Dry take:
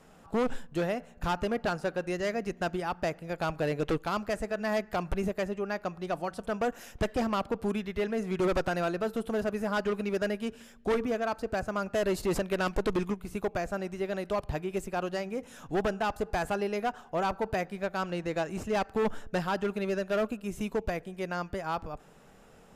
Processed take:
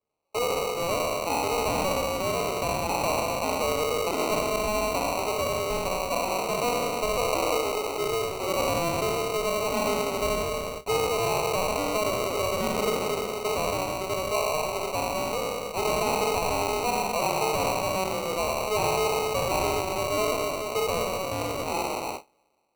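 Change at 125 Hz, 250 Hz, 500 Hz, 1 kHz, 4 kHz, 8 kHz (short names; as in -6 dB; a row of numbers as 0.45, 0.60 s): +1.5, -1.5, +4.5, +7.5, +11.5, +16.0 dB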